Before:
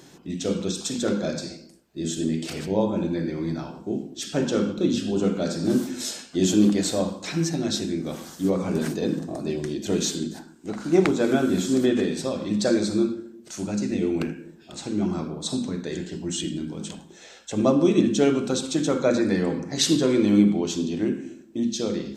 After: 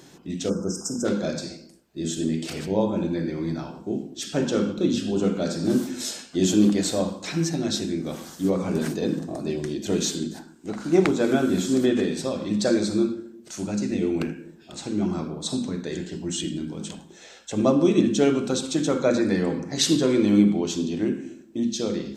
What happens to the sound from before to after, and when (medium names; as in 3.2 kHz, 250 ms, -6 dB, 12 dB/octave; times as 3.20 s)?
0.49–1.05 s: spectral selection erased 1.6–4.9 kHz